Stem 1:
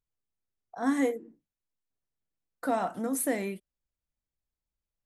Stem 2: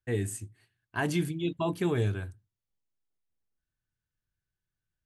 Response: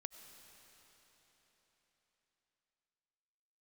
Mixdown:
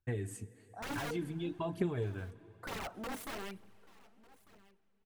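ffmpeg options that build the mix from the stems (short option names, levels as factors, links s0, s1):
-filter_complex "[0:a]aeval=exprs='(mod(21.1*val(0)+1,2)-1)/21.1':c=same,volume=0.316,asplit=4[s0][s1][s2][s3];[s1]volume=0.376[s4];[s2]volume=0.0944[s5];[1:a]acompressor=threshold=0.0251:ratio=6,volume=0.668,asplit=2[s6][s7];[s7]volume=0.668[s8];[s3]apad=whole_len=222958[s9];[s6][s9]sidechaincompress=threshold=0.00398:ratio=8:attack=16:release=101[s10];[2:a]atrim=start_sample=2205[s11];[s4][s8]amix=inputs=2:normalize=0[s12];[s12][s11]afir=irnorm=-1:irlink=0[s13];[s5]aecho=0:1:1199:1[s14];[s0][s10][s13][s14]amix=inputs=4:normalize=0,aphaser=in_gain=1:out_gain=1:delay=4.8:decay=0.44:speed=1.1:type=triangular,highshelf=f=2900:g=-9.5"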